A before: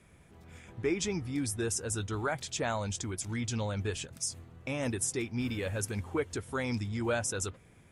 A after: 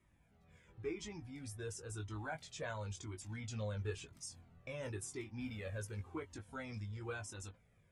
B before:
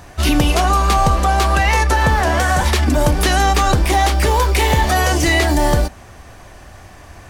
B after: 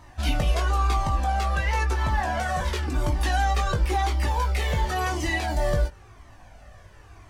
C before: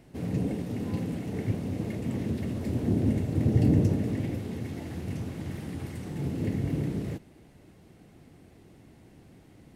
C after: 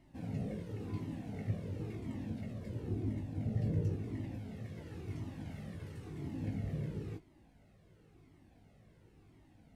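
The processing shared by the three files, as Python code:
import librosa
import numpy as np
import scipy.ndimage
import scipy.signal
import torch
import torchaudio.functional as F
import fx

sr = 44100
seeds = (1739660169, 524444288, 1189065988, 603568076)

y = fx.high_shelf(x, sr, hz=6500.0, db=-7.5)
y = fx.rider(y, sr, range_db=3, speed_s=2.0)
y = fx.doubler(y, sr, ms=19.0, db=-6.0)
y = fx.comb_cascade(y, sr, direction='falling', hz=0.96)
y = F.gain(torch.from_numpy(y), -7.5).numpy()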